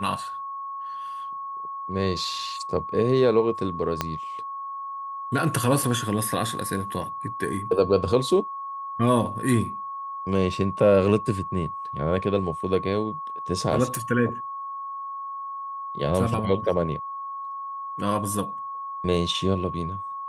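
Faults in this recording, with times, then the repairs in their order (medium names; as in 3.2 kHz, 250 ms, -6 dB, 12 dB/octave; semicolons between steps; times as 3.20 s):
whine 1.1 kHz -31 dBFS
4.01 s: pop -9 dBFS
13.95 s: pop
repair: de-click; band-stop 1.1 kHz, Q 30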